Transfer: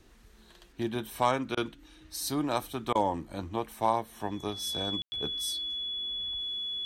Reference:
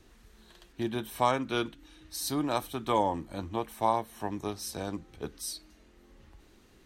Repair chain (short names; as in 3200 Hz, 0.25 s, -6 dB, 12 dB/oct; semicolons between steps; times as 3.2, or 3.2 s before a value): clip repair -13.5 dBFS; notch 3400 Hz, Q 30; room tone fill 5.02–5.12; interpolate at 1.55/2.93, 20 ms